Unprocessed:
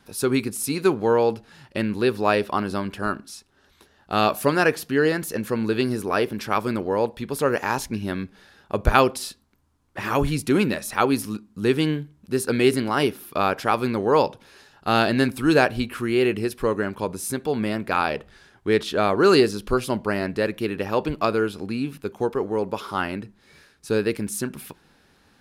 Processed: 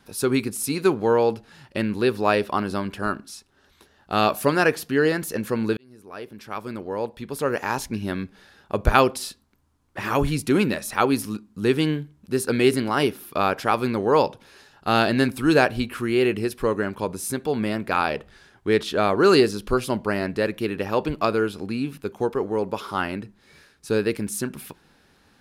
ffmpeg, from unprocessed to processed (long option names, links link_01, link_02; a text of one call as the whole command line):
ffmpeg -i in.wav -filter_complex "[0:a]asplit=2[link_01][link_02];[link_01]atrim=end=5.77,asetpts=PTS-STARTPTS,afade=type=out:start_time=5.766:duration=0.004:curve=hsin[link_03];[link_02]atrim=start=5.77,asetpts=PTS-STARTPTS,afade=type=in:duration=2.28[link_04];[link_03][link_04]concat=n=2:v=0:a=1" out.wav